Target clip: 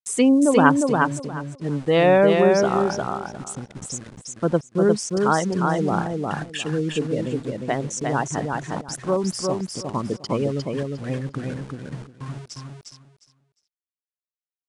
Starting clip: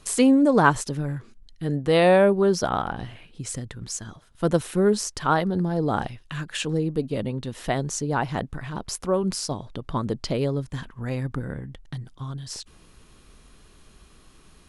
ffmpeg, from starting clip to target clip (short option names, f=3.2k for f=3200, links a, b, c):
-filter_complex "[0:a]afftfilt=real='re*gte(hypot(re,im),0.0282)':imag='im*gte(hypot(re,im),0.0282)':win_size=1024:overlap=0.75,highpass=120,bandreject=f=4.1k:w=5.5,aeval=exprs='val(0)*gte(abs(val(0)),0.0126)':c=same,asplit=2[a][b];[b]aecho=0:1:355|710|1065:0.668|0.134|0.0267[c];[a][c]amix=inputs=2:normalize=0,aresample=22050,aresample=44100,volume=1dB"